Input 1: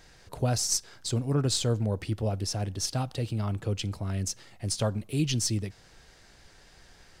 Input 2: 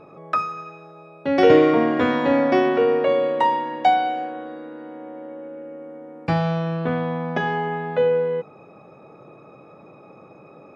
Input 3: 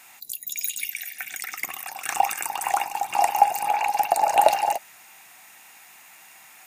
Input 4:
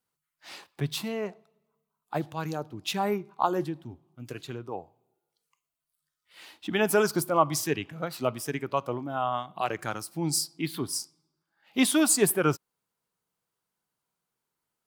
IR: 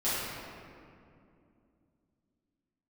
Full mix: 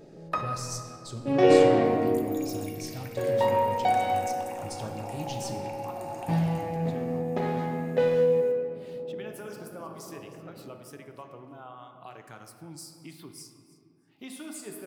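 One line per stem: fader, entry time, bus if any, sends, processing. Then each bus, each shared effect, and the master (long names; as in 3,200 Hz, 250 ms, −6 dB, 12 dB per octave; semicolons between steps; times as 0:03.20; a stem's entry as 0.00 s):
−12.5 dB, 0.00 s, no bus, send −11.5 dB, no echo send, no processing
−2.5 dB, 0.00 s, muted 0:01.85–0:03.17, no bus, send −12 dB, no echo send, adaptive Wiener filter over 41 samples; parametric band 1,400 Hz −9 dB 0.22 octaves; automatic ducking −9 dB, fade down 1.95 s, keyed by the first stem
−16.5 dB, 1.85 s, bus A, send −14 dB, no echo send, no processing
−10.5 dB, 2.45 s, bus A, send −21 dB, echo send −23 dB, no processing
bus A: 0.0 dB, downward compressor 4 to 1, threshold −44 dBFS, peak gain reduction 15 dB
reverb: on, RT60 2.5 s, pre-delay 5 ms
echo: repeating echo 314 ms, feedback 16%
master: no processing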